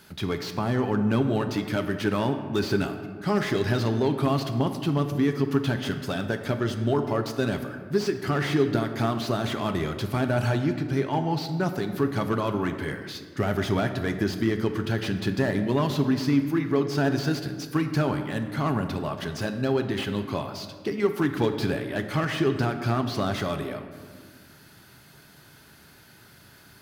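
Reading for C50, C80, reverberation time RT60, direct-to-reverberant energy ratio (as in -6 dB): 8.5 dB, 10.0 dB, 1.6 s, 6.5 dB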